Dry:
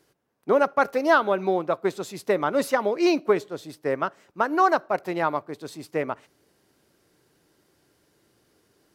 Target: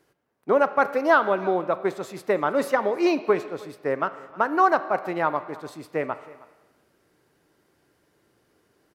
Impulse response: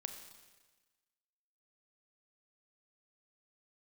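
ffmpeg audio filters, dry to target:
-filter_complex "[0:a]aecho=1:1:315:0.0841,asplit=2[a][b];[1:a]atrim=start_sample=2205,lowpass=2.8k,lowshelf=f=460:g=-8.5[c];[b][c]afir=irnorm=-1:irlink=0,volume=2.5dB[d];[a][d]amix=inputs=2:normalize=0,volume=-4dB"

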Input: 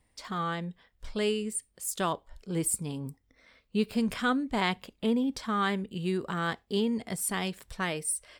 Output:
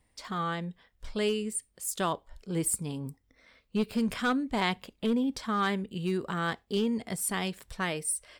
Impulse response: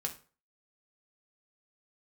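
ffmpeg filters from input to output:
-af "aeval=exprs='clip(val(0),-1,0.0841)':c=same"

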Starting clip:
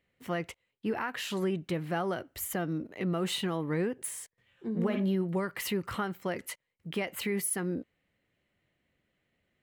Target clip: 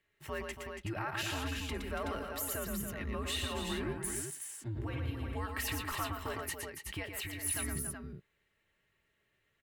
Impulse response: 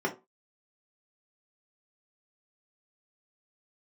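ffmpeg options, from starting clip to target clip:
-filter_complex "[0:a]alimiter=level_in=3dB:limit=-24dB:level=0:latency=1:release=103,volume=-3dB,aecho=1:1:4.1:0.34,afreqshift=-110,aecho=1:1:116|281|374:0.562|0.376|0.501,asplit=3[a][b][c];[a]afade=t=out:st=7.02:d=0.02[d];[b]acompressor=threshold=-35dB:ratio=6,afade=t=in:st=7.02:d=0.02,afade=t=out:st=7.44:d=0.02[e];[c]afade=t=in:st=7.44:d=0.02[f];[d][e][f]amix=inputs=3:normalize=0,lowshelf=f=470:g=-6.5"

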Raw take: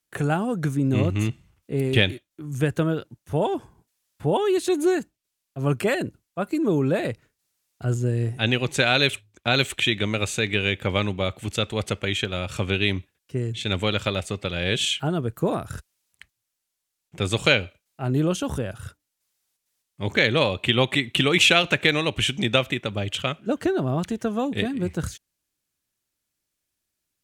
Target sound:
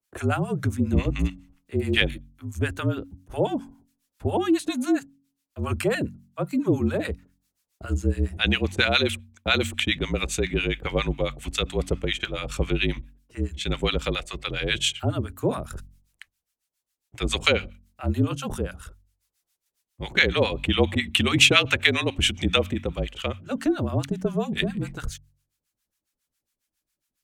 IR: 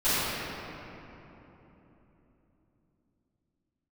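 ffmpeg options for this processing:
-filter_complex "[0:a]acrossover=split=870[a][b];[a]aeval=exprs='val(0)*(1-1/2+1/2*cos(2*PI*7.3*n/s))':c=same[c];[b]aeval=exprs='val(0)*(1-1/2-1/2*cos(2*PI*7.3*n/s))':c=same[d];[c][d]amix=inputs=2:normalize=0,bandreject=f=45.61:t=h:w=4,bandreject=f=91.22:t=h:w=4,bandreject=f=136.83:t=h:w=4,bandreject=f=182.44:t=h:w=4,bandreject=f=228.05:t=h:w=4,bandreject=f=273.66:t=h:w=4,bandreject=f=319.27:t=h:w=4,afreqshift=-43,volume=3.5dB"

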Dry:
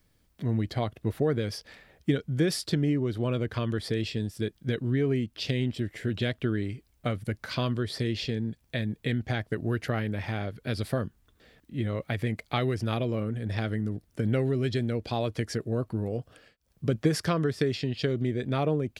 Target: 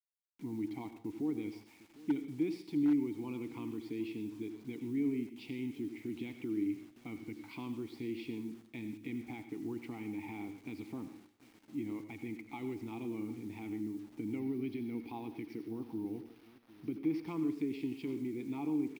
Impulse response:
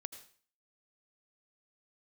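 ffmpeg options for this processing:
-filter_complex "[0:a]alimiter=limit=-19.5dB:level=0:latency=1:release=34,asplit=3[a][b][c];[a]bandpass=f=300:t=q:w=8,volume=0dB[d];[b]bandpass=f=870:t=q:w=8,volume=-6dB[e];[c]bandpass=f=2.24k:t=q:w=8,volume=-9dB[f];[d][e][f]amix=inputs=3:normalize=0,asplit=2[g][h];[h]adelay=753,lowpass=f=4.2k:p=1,volume=-20dB,asplit=2[i][j];[j]adelay=753,lowpass=f=4.2k:p=1,volume=0.33,asplit=2[k][l];[l]adelay=753,lowpass=f=4.2k:p=1,volume=0.33[m];[g][i][k][m]amix=inputs=4:normalize=0,acrusher=bits=10:mix=0:aa=0.000001[n];[1:a]atrim=start_sample=2205[o];[n][o]afir=irnorm=-1:irlink=0,aeval=exprs='0.0316*(abs(mod(val(0)/0.0316+3,4)-2)-1)':c=same,asettb=1/sr,asplit=3[p][q][r];[p]atrim=end=14.394[s];[q]atrim=start=14.39:end=17.28,asetpts=PTS-STARTPTS,afade=t=in:d=0.004:c=qsin,afade=t=out:st=2.886:d=0.004:c=qsin,equalizer=f=7.4k:w=2.7:g=-14[t];[r]atrim=start=17.276[u];[s][t]acrossfade=d=0.004:c1=hsin:c2=qsin[v];[v][u]acrossfade=d=0.004:c1=qsin:c2=hsin,volume=6.5dB"

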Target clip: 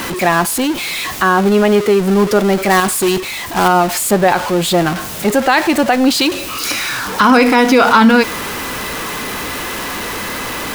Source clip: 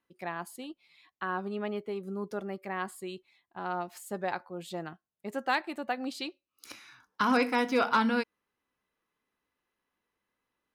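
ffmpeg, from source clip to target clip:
-filter_complex "[0:a]aeval=exprs='val(0)+0.5*0.0126*sgn(val(0))':c=same,asettb=1/sr,asplit=3[a][b][c];[a]atrim=end=2.704[d];[b]atrim=start=2.7:end=3.68,asetpts=PTS-STARTPTS,afade=t=in:d=0.004:c=qsin,afade=t=out:st=0.976:d=0.004:c=qsin,acrusher=bits=2:mode=log:mix=0:aa=0.000001[e];[c]atrim=start=3.676[f];[d][e]acrossfade=d=0.004:c1=hsin:c2=qsin[g];[g][f]acrossfade=d=0.004:c1=qsin:c2=hsin,alimiter=level_in=23dB:limit=-1dB:release=50:level=0:latency=1,volume=-1dB"

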